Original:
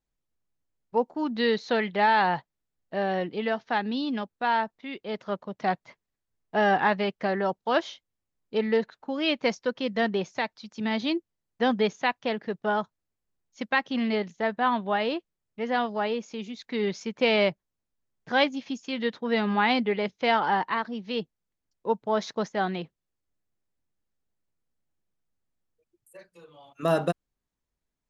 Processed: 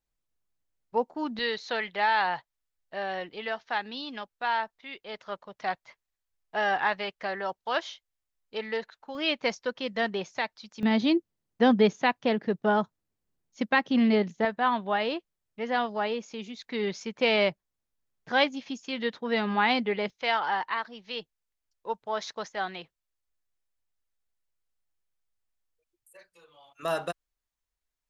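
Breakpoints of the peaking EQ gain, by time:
peaking EQ 200 Hz 2.7 oct
-4.5 dB
from 1.39 s -14 dB
from 9.15 s -6.5 dB
from 10.83 s +5 dB
from 14.45 s -3.5 dB
from 20.10 s -14.5 dB

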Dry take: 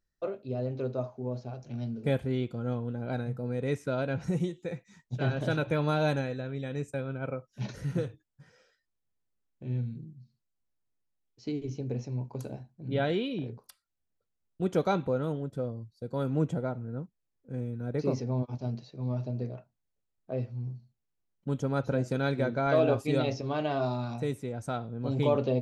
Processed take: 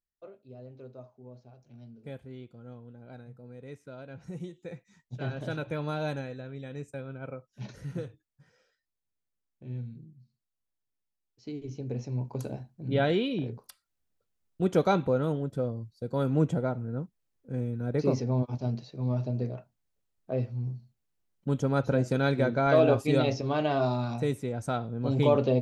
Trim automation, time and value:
4.06 s -14 dB
4.70 s -5 dB
11.49 s -5 dB
12.28 s +3 dB

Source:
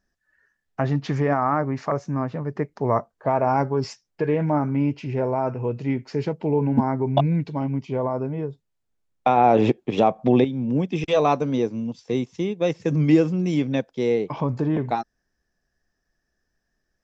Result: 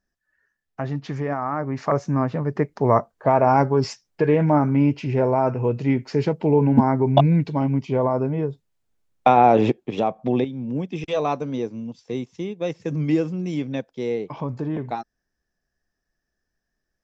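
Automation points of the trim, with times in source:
1.53 s -4.5 dB
1.95 s +4 dB
9.27 s +4 dB
10.00 s -4 dB

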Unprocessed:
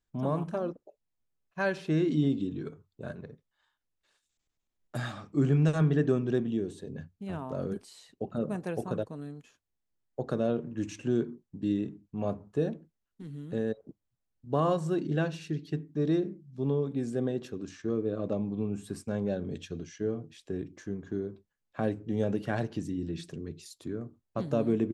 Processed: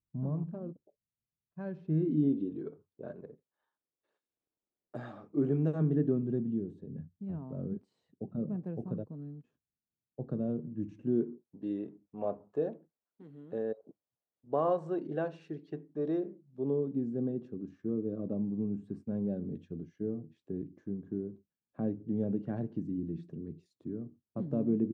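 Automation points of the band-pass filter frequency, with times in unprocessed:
band-pass filter, Q 1.1
1.83 s 130 Hz
2.47 s 420 Hz
5.38 s 420 Hz
6.38 s 170 Hz
10.95 s 170 Hz
11.57 s 610 Hz
16.42 s 610 Hz
17.06 s 210 Hz

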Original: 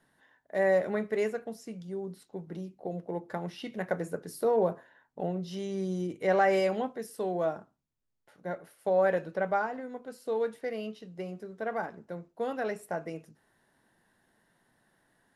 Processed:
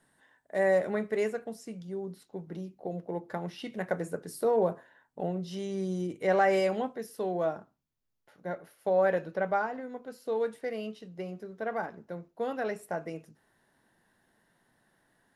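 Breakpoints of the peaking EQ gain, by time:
peaking EQ 8.4 kHz 0.28 oct
+11.5 dB
from 0.86 s +4.5 dB
from 1.79 s -3 dB
from 3.59 s +4 dB
from 6.94 s -7.5 dB
from 10.38 s +3.5 dB
from 11.08 s -7.5 dB
from 12.73 s -1 dB

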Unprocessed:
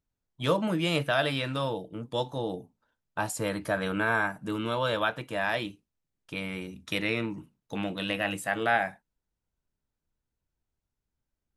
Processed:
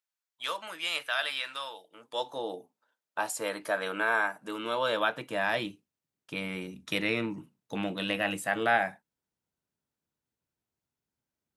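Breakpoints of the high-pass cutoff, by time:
1.83 s 1.2 kHz
2.35 s 420 Hz
4.55 s 420 Hz
5.52 s 130 Hz

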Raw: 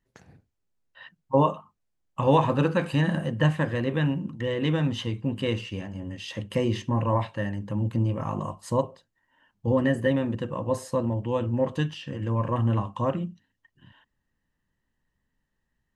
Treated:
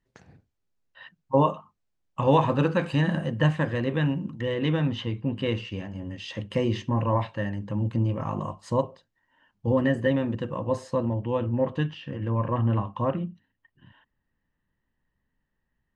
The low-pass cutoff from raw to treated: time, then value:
4.36 s 7 kHz
5.07 s 3.5 kHz
5.95 s 5.8 kHz
10.71 s 5.8 kHz
11.49 s 3.1 kHz

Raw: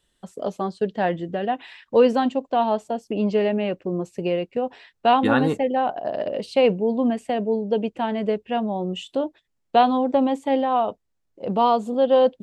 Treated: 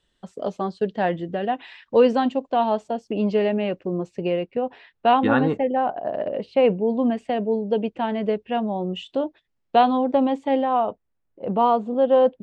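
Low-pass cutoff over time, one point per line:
3.88 s 5.8 kHz
4.47 s 3.3 kHz
5.18 s 3.3 kHz
5.72 s 2.2 kHz
6.58 s 2.2 kHz
7.01 s 4.4 kHz
10.43 s 4.4 kHz
10.89 s 2.3 kHz

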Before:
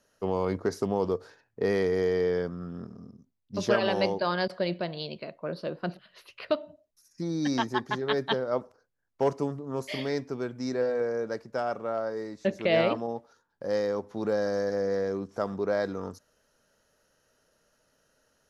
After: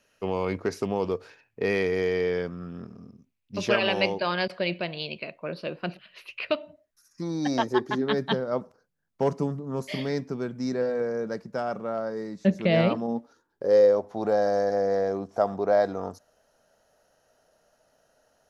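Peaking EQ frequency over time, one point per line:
peaking EQ +13 dB 0.56 oct
6.63 s 2.5 kHz
7.42 s 830 Hz
8.21 s 180 Hz
12.96 s 180 Hz
14.10 s 710 Hz

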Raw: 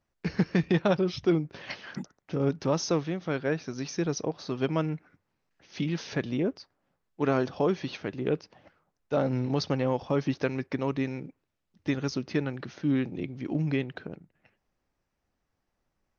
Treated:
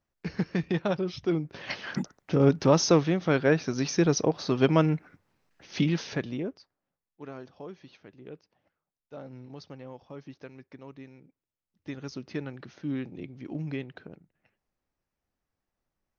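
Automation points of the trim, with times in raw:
1.27 s -3.5 dB
1.88 s +6 dB
5.78 s +6 dB
6.48 s -6 dB
7.31 s -16.5 dB
11.18 s -16.5 dB
12.30 s -6 dB

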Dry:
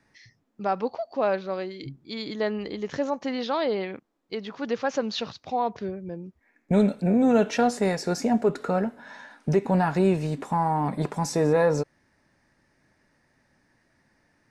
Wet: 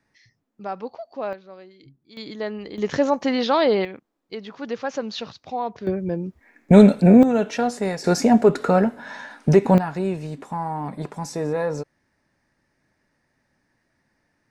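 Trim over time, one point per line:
-4.5 dB
from 1.33 s -12.5 dB
from 2.17 s -2 dB
from 2.78 s +7.5 dB
from 3.85 s -1 dB
from 5.87 s +10 dB
from 7.23 s -0.5 dB
from 8.04 s +7.5 dB
from 9.78 s -3.5 dB

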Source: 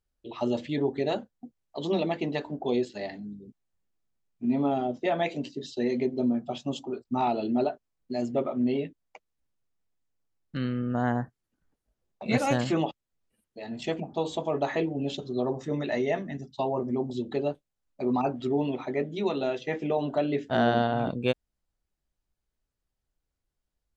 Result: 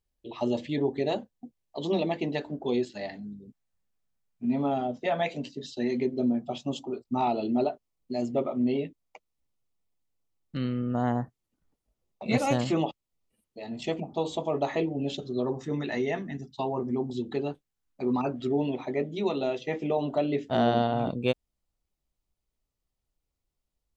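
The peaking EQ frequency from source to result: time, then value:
peaking EQ -9.5 dB 0.29 oct
2.26 s 1.4 kHz
3.08 s 340 Hz
5.69 s 340 Hz
6.48 s 1.6 kHz
14.87 s 1.6 kHz
15.59 s 590 Hz
18.01 s 590 Hz
18.99 s 1.6 kHz

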